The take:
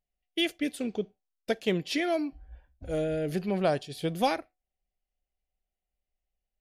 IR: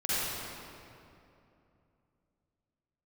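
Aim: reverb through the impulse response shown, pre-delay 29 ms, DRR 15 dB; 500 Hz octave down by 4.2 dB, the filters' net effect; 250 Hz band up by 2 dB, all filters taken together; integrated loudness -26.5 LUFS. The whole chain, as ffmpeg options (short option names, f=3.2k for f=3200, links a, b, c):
-filter_complex "[0:a]equalizer=f=250:t=o:g=5.5,equalizer=f=500:t=o:g=-7.5,asplit=2[a][b];[1:a]atrim=start_sample=2205,adelay=29[c];[b][c]afir=irnorm=-1:irlink=0,volume=-25dB[d];[a][d]amix=inputs=2:normalize=0,volume=4.5dB"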